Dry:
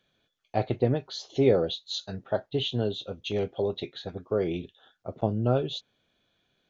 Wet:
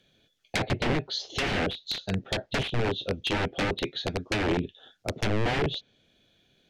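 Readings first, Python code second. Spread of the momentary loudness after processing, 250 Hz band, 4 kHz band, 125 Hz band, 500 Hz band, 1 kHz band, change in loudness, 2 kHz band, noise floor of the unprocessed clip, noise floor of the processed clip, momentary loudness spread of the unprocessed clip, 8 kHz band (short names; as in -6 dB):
5 LU, -0.5 dB, +3.5 dB, -0.5 dB, -4.5 dB, +3.5 dB, -0.5 dB, +13.0 dB, -75 dBFS, -69 dBFS, 12 LU, n/a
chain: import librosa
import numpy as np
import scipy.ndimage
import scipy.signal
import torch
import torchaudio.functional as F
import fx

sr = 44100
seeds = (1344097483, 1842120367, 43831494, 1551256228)

y = (np.mod(10.0 ** (25.0 / 20.0) * x + 1.0, 2.0) - 1.0) / 10.0 ** (25.0 / 20.0)
y = fx.peak_eq(y, sr, hz=1100.0, db=-10.0, octaves=1.1)
y = fx.env_lowpass_down(y, sr, base_hz=2100.0, full_db=-30.0)
y = y * librosa.db_to_amplitude(8.5)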